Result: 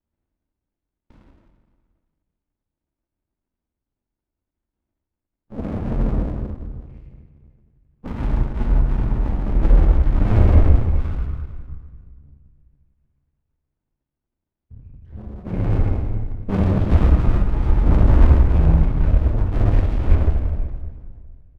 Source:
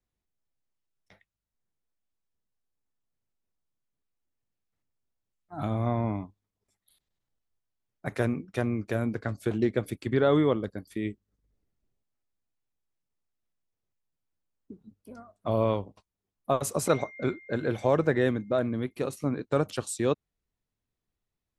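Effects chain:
pitch shift by two crossfaded delay taps −5.5 semitones
spectral tilt −3.5 dB per octave
mains-hum notches 60/120/180/240/300/360/420 Hz
comb filter 3.3 ms, depth 47%
in parallel at −2 dB: output level in coarse steps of 14 dB
on the sum: soft clipping −13 dBFS, distortion −14 dB
convolution reverb RT60 1.8 s, pre-delay 18 ms, DRR −6 dB
single-sideband voice off tune −300 Hz 270–3,100 Hz
windowed peak hold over 65 samples
level +2.5 dB

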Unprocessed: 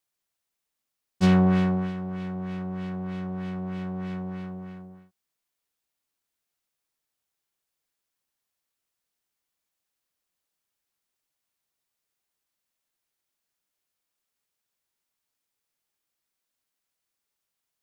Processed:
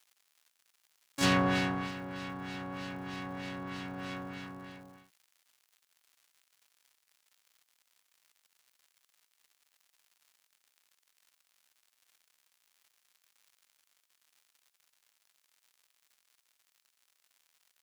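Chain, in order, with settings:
pitch-shifted copies added −7 semitones −6 dB, +7 semitones −1 dB
surface crackle 160 per second −52 dBFS
tilt shelving filter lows −8.5 dB, about 650 Hz
level −7 dB

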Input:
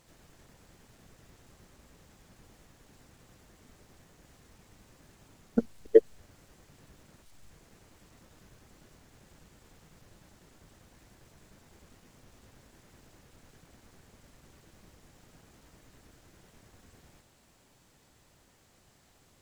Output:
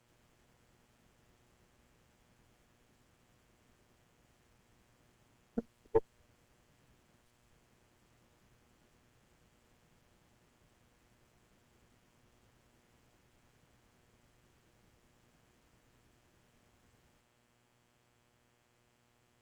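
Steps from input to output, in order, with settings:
hum with harmonics 120 Hz, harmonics 28, −63 dBFS −3 dB per octave
tube saturation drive 9 dB, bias 0.75
level −7.5 dB

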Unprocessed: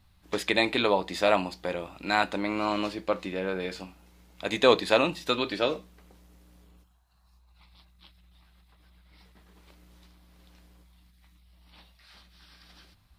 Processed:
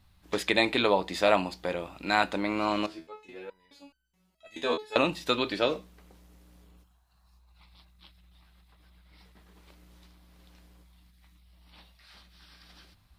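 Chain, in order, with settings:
0:02.86–0:04.96: step-sequenced resonator 4.7 Hz 81–1,500 Hz

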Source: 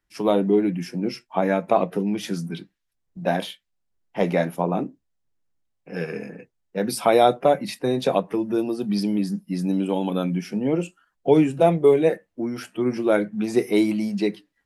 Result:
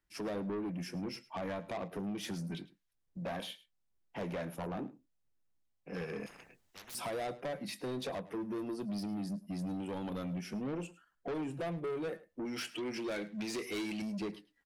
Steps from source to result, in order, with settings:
0:12.45–0:14.02: meter weighting curve D
downward compressor 2 to 1, threshold −29 dBFS, peak gain reduction 10 dB
soft clipping −29 dBFS, distortion −8 dB
single-tap delay 106 ms −19 dB
0:06.26–0:06.95: every bin compressed towards the loudest bin 10 to 1
level −5 dB

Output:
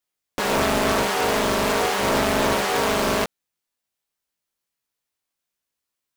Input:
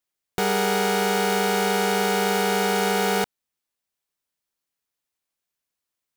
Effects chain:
chorus effect 0.65 Hz, delay 16.5 ms, depth 3 ms
highs frequency-modulated by the lows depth 0.95 ms
level +4.5 dB

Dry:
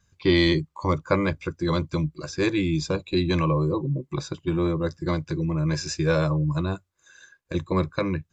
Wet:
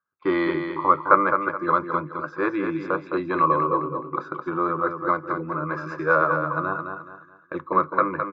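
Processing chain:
high-pass filter 320 Hz 12 dB per octave
noise gate −45 dBFS, range −18 dB
reversed playback
upward compression, threshold −35 dBFS
reversed playback
low-pass with resonance 1,300 Hz, resonance Q 8.1
repeating echo 212 ms, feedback 33%, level −6.5 dB
on a send at −21 dB: convolution reverb, pre-delay 3 ms

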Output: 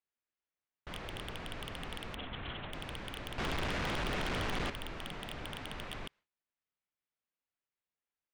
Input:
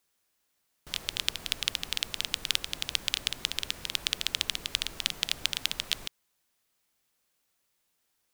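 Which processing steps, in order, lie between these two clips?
0:03.38–0:04.70: converter with a step at zero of −30.5 dBFS
noise gate with hold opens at −43 dBFS
Chebyshev low-pass filter 2,400 Hz, order 2
soft clipping −37 dBFS, distortion 0 dB
0:02.15–0:02.73: linear-prediction vocoder at 8 kHz whisper
level +5.5 dB

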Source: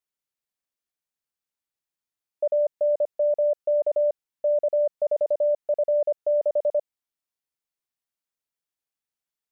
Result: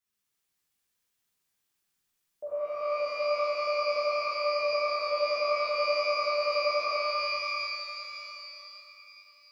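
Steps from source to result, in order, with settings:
parametric band 580 Hz −7 dB 0.97 octaves
brickwall limiter −35 dBFS, peak gain reduction 11 dB
reverb with rising layers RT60 3.3 s, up +12 semitones, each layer −2 dB, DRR −9.5 dB

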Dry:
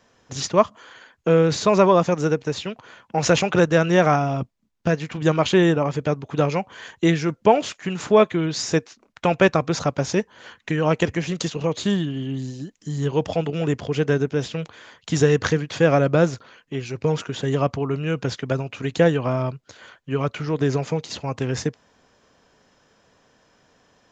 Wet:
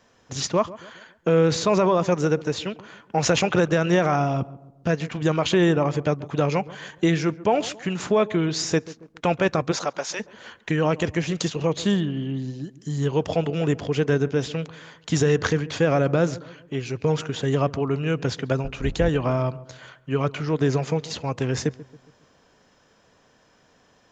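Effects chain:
0:18.64–0:19.09: sub-octave generator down 2 octaves, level 0 dB
brickwall limiter −10.5 dBFS, peak gain reduction 7 dB
0:09.71–0:10.19: high-pass filter 330 Hz → 1,000 Hz 12 dB per octave
0:12.00–0:12.64: high-frequency loss of the air 130 metres
feedback echo with a low-pass in the loop 138 ms, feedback 46%, low-pass 1,100 Hz, level −17 dB

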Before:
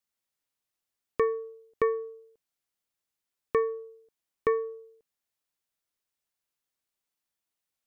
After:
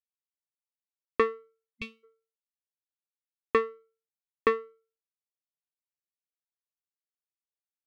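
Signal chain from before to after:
power curve on the samples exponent 2
gain on a spectral selection 0:01.75–0:02.04, 230–2,100 Hz −27 dB
level +6 dB

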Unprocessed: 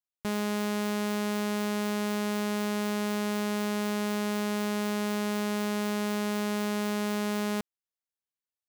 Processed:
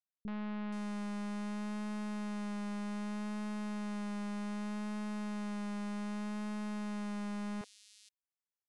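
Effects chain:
wavefolder on the positive side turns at −31 dBFS
Chebyshev low-pass filter 10,000 Hz, order 4
high-shelf EQ 4,200 Hz −6 dB
three-band delay without the direct sound lows, mids, highs 30/480 ms, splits 350/3,600 Hz
pitch vibrato 0.65 Hz 20 cents
level −4.5 dB

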